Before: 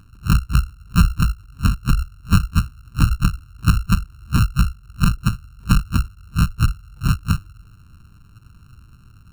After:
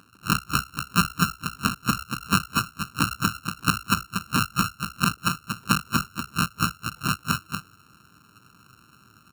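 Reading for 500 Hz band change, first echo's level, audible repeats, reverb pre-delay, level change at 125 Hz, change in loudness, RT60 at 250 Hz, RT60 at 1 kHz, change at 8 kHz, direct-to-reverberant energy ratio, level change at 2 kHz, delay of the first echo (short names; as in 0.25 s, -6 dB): +3.0 dB, -6.0 dB, 1, none, -11.5 dB, -4.5 dB, none, none, +4.0 dB, none, +4.0 dB, 0.236 s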